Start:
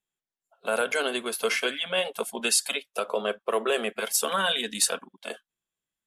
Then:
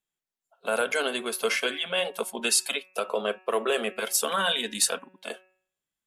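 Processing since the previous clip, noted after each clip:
hum removal 186.2 Hz, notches 15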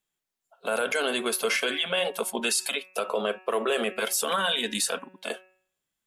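brickwall limiter −20.5 dBFS, peak gain reduction 10 dB
level +4.5 dB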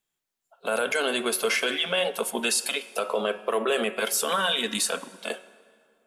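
dense smooth reverb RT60 2.2 s, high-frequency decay 0.7×, DRR 16 dB
level +1 dB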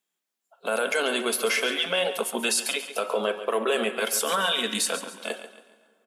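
linear-phase brick-wall high-pass 160 Hz
on a send: repeating echo 139 ms, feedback 38%, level −12 dB

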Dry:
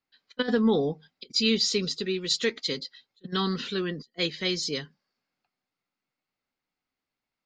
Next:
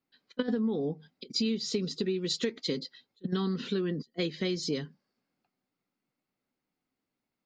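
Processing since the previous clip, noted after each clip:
parametric band 240 Hz +11 dB 2.8 octaves
downward compressor 12 to 1, threshold −23 dBFS, peak gain reduction 15.5 dB
level −3.5 dB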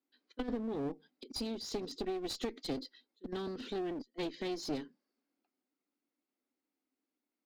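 low shelf with overshoot 190 Hz −13.5 dB, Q 3
asymmetric clip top −34.5 dBFS
level −7 dB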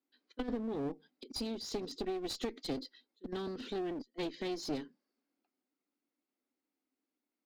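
no processing that can be heard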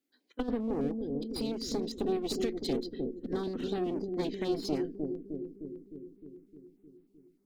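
on a send: bucket-brigade delay 306 ms, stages 1,024, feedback 67%, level −3 dB
on the sum: notch on a step sequencer 9.9 Hz 970–6,200 Hz
level +4.5 dB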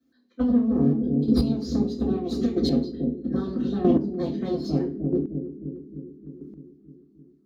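convolution reverb RT60 0.40 s, pre-delay 3 ms, DRR −6.5 dB
square-wave tremolo 0.78 Hz, depth 65%, duty 10%
level −7.5 dB

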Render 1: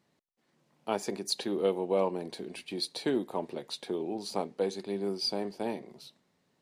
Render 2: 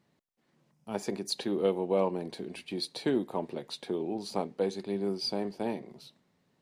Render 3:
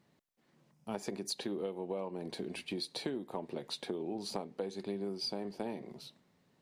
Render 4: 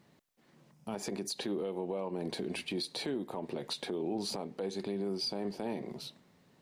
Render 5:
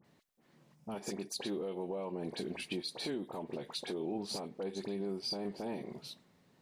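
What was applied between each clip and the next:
gain on a spectral selection 0:00.71–0:00.95, 230–4,800 Hz −11 dB; bass and treble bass +4 dB, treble −3 dB
downward compressor 12 to 1, threshold −35 dBFS, peak gain reduction 14 dB; level +1 dB
brickwall limiter −33 dBFS, peak gain reduction 11 dB; level +6 dB
all-pass dispersion highs, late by 46 ms, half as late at 1,900 Hz; level −2.5 dB

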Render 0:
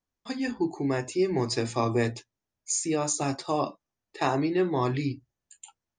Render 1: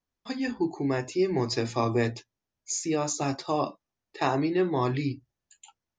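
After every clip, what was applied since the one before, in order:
Butterworth low-pass 6,800 Hz 36 dB per octave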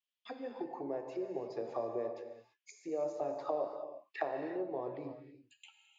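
downward compressor 10 to 1, threshold −31 dBFS, peak gain reduction 11.5 dB
envelope filter 550–3,100 Hz, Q 4.3, down, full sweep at −31.5 dBFS
on a send at −5.5 dB: convolution reverb, pre-delay 3 ms
on the sum: level +6 dB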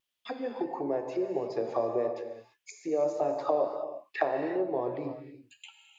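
pitch vibrato 1.6 Hz 23 cents
level +8 dB

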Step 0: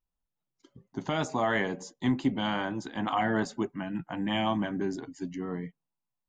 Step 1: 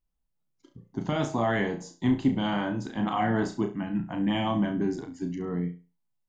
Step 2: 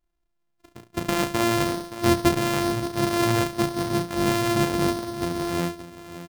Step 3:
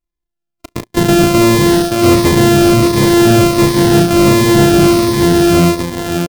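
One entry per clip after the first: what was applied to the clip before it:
low-shelf EQ 390 Hz +8 dB; on a send: flutter between parallel walls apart 5.9 metres, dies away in 0.31 s; on the sum: level −2.5 dB
samples sorted by size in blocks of 128 samples; single-tap delay 572 ms −13 dB; level +3.5 dB
leveller curve on the samples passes 5; phaser whose notches keep moving one way falling 1.4 Hz; level +5.5 dB

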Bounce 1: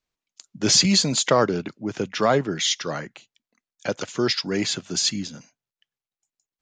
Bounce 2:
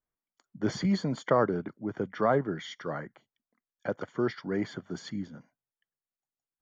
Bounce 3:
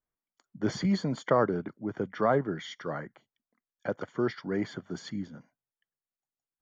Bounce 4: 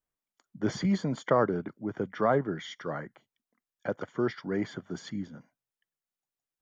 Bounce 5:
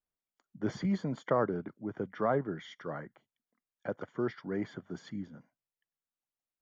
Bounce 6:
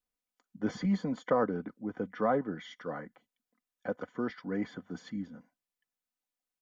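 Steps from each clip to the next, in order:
Savitzky-Golay smoothing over 41 samples; level −5.5 dB
no processing that can be heard
notch filter 4,400 Hz, Q 19
high-shelf EQ 3,800 Hz −8.5 dB; level −4 dB
comb filter 4 ms, depth 56%

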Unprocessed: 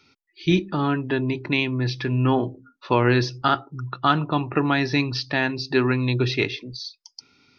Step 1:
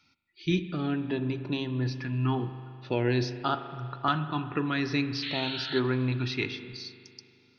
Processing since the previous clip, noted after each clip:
sound drawn into the spectrogram noise, 0:05.22–0:05.80, 1,300–4,400 Hz −26 dBFS
auto-filter notch saw up 0.49 Hz 400–3,700 Hz
spring reverb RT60 2.5 s, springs 39 ms, chirp 45 ms, DRR 10.5 dB
level −7 dB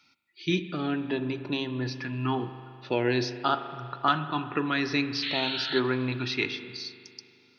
high-pass filter 290 Hz 6 dB per octave
level +3.5 dB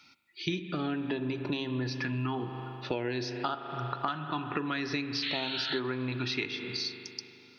downward compressor 10 to 1, threshold −34 dBFS, peak gain reduction 16.5 dB
level +5 dB

